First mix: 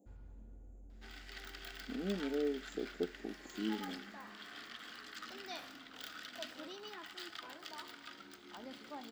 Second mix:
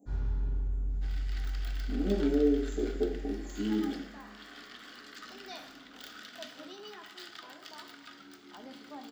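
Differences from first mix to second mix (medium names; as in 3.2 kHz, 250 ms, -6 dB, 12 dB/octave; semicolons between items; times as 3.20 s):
first sound +9.0 dB; reverb: on, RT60 0.70 s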